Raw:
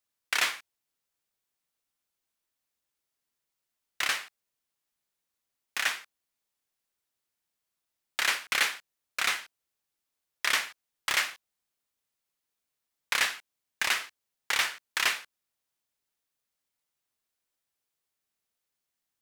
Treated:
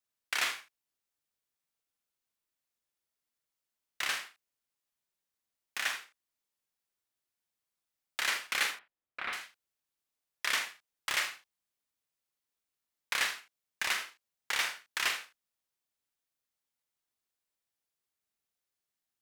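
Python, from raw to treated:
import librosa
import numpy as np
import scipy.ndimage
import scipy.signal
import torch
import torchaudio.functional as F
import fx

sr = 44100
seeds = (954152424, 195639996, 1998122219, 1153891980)

p1 = fx.air_absorb(x, sr, metres=450.0, at=(8.71, 9.33))
p2 = p1 + fx.room_early_taps(p1, sr, ms=(43, 78), db=(-8.5, -13.0), dry=0)
y = p2 * librosa.db_to_amplitude(-5.0)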